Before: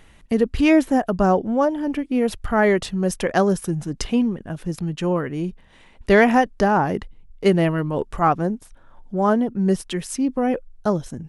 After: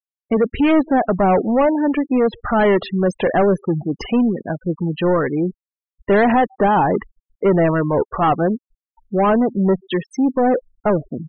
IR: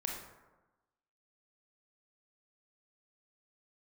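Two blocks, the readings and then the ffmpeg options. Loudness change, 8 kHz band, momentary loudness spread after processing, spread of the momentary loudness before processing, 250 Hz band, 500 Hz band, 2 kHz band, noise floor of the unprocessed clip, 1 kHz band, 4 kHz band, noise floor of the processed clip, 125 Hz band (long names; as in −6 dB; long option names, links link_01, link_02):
+3.0 dB, below −10 dB, 7 LU, 11 LU, +2.5 dB, +3.5 dB, 0.0 dB, −51 dBFS, +3.5 dB, −0.5 dB, below −85 dBFS, +2.0 dB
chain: -filter_complex "[0:a]asplit=2[link_01][link_02];[link_02]highpass=frequency=720:poles=1,volume=25dB,asoftclip=type=tanh:threshold=-3.5dB[link_03];[link_01][link_03]amix=inputs=2:normalize=0,lowpass=frequency=1100:poles=1,volume=-6dB,asplit=2[link_04][link_05];[link_05]adelay=134.1,volume=-29dB,highshelf=frequency=4000:gain=-3.02[link_06];[link_04][link_06]amix=inputs=2:normalize=0,afftfilt=real='re*gte(hypot(re,im),0.1)':imag='im*gte(hypot(re,im),0.1)':win_size=1024:overlap=0.75,volume=-2.5dB"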